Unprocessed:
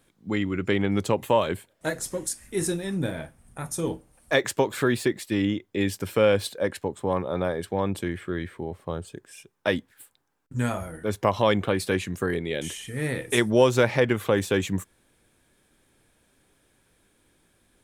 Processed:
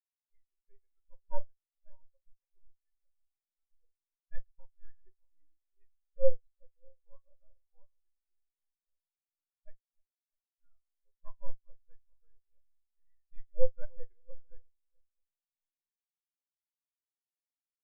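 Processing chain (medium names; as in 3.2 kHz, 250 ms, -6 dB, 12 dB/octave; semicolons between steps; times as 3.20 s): backward echo that repeats 328 ms, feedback 63%, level -8.5 dB; high-pass 690 Hz 12 dB/octave; half-wave rectifier; doubling 45 ms -8 dB; spectral contrast expander 4:1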